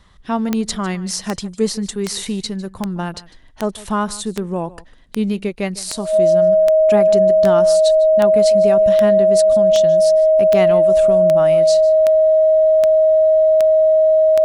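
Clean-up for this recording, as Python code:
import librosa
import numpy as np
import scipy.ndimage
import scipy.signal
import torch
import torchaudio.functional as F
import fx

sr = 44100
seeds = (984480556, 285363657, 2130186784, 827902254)

y = fx.fix_declick_ar(x, sr, threshold=10.0)
y = fx.notch(y, sr, hz=630.0, q=30.0)
y = fx.fix_echo_inverse(y, sr, delay_ms=152, level_db=-19.5)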